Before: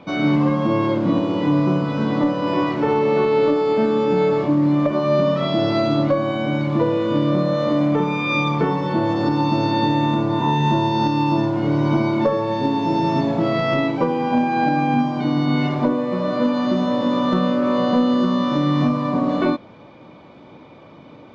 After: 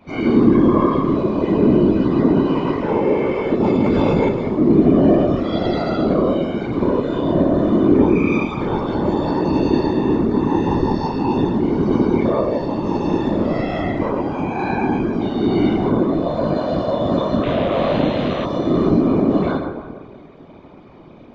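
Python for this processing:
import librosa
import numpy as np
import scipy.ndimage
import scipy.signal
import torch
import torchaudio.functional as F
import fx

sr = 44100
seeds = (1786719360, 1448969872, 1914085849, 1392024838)

y = fx.rev_fdn(x, sr, rt60_s=1.4, lf_ratio=1.45, hf_ratio=0.45, size_ms=29.0, drr_db=-8.5)
y = fx.dmg_buzz(y, sr, base_hz=100.0, harmonics=38, level_db=-20.0, tilt_db=-2, odd_only=False, at=(17.42, 18.44), fade=0.02)
y = fx.whisperise(y, sr, seeds[0])
y = fx.env_flatten(y, sr, amount_pct=100, at=(3.6, 4.29))
y = F.gain(torch.from_numpy(y), -11.0).numpy()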